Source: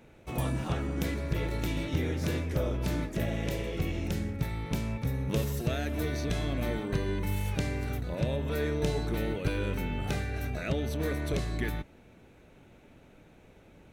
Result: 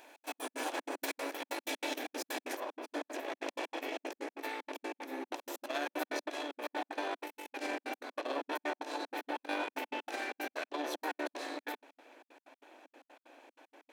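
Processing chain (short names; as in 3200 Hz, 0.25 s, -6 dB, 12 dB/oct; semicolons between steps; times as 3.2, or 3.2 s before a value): minimum comb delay 1.2 ms; high shelf 6000 Hz +6.5 dB, from 2.6 s -7.5 dB; negative-ratio compressor -33 dBFS, ratio -0.5; step gate "xx.x.x.x" 189 bpm -60 dB; brick-wall FIR high-pass 260 Hz; gain +3 dB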